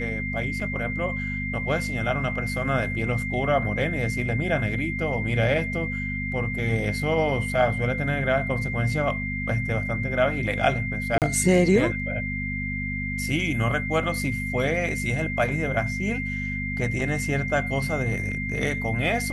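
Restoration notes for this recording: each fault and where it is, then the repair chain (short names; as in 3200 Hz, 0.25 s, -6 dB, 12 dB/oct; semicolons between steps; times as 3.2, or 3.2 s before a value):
hum 50 Hz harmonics 5 -31 dBFS
tone 2100 Hz -30 dBFS
0.6 gap 3.8 ms
11.18–11.22 gap 38 ms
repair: de-hum 50 Hz, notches 5; notch 2100 Hz, Q 30; interpolate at 0.6, 3.8 ms; interpolate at 11.18, 38 ms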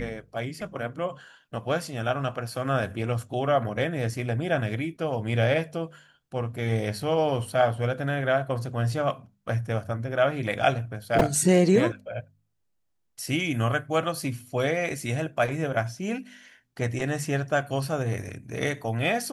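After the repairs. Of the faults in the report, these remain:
none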